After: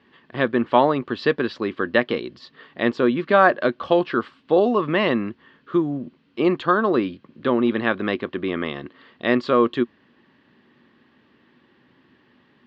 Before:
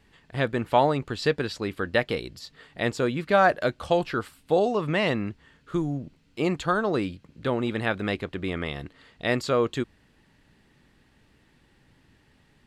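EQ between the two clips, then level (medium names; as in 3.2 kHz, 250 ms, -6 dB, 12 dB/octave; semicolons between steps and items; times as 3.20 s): cabinet simulation 140–4500 Hz, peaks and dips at 240 Hz +9 dB, 360 Hz +8 dB, 550 Hz +4 dB, 1.1 kHz +10 dB, 1.7 kHz +5 dB, 3.1 kHz +4 dB; 0.0 dB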